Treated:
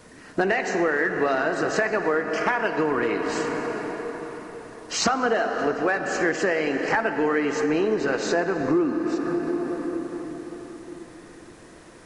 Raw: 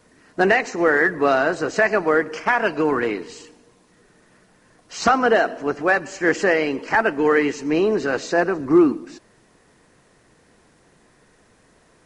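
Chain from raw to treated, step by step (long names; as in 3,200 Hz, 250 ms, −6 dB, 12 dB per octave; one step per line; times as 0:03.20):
convolution reverb RT60 4.6 s, pre-delay 21 ms, DRR 7.5 dB
downward compressor 4 to 1, threshold −29 dBFS, peak gain reduction 16 dB
level +7 dB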